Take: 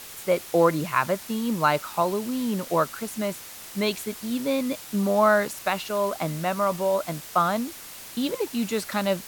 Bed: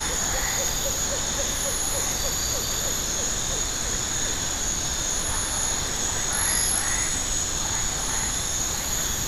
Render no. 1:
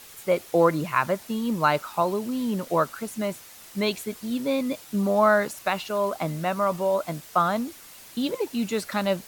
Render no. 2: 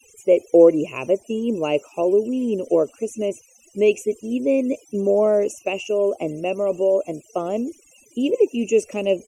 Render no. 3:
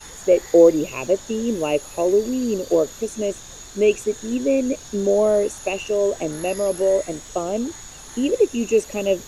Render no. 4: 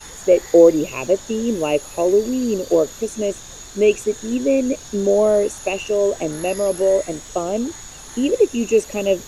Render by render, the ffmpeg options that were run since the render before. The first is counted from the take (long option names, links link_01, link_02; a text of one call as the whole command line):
ffmpeg -i in.wav -af "afftdn=noise_reduction=6:noise_floor=-42" out.wav
ffmpeg -i in.wav -af "afftfilt=real='re*gte(hypot(re,im),0.00631)':imag='im*gte(hypot(re,im),0.00631)':win_size=1024:overlap=0.75,firequalizer=gain_entry='entry(110,0);entry(170,-7);entry(240,4);entry(420,13);entry(890,-10);entry(1600,-23);entry(2700,9);entry(3900,-29);entry(6000,9);entry(16000,-20)':delay=0.05:min_phase=1" out.wav
ffmpeg -i in.wav -i bed.wav -filter_complex "[1:a]volume=-13.5dB[link_01];[0:a][link_01]amix=inputs=2:normalize=0" out.wav
ffmpeg -i in.wav -af "volume=2dB,alimiter=limit=-2dB:level=0:latency=1" out.wav